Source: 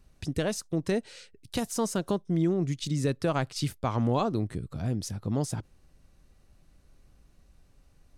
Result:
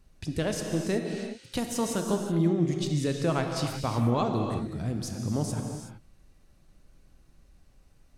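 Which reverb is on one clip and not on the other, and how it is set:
reverb whose tail is shaped and stops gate 400 ms flat, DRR 2.5 dB
level −1 dB

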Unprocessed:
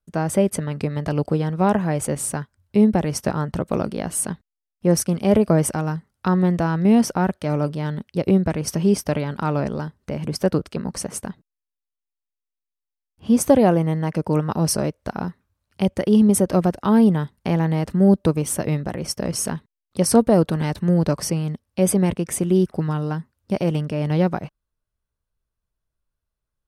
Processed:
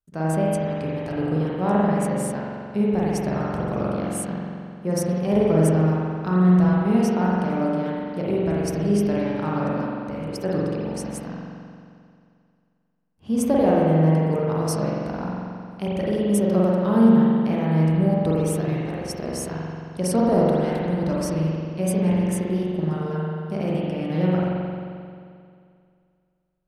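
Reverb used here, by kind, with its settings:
spring reverb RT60 2.3 s, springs 44 ms, chirp 45 ms, DRR −6 dB
level −8.5 dB

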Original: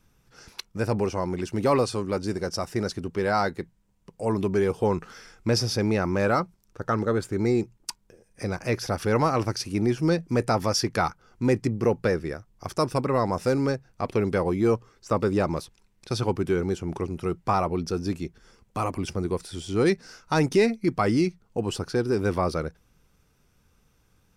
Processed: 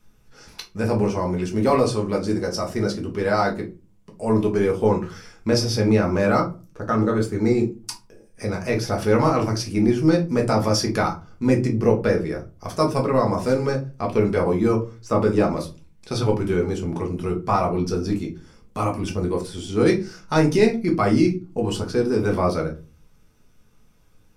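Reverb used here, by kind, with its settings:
rectangular room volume 130 cubic metres, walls furnished, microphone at 1.4 metres

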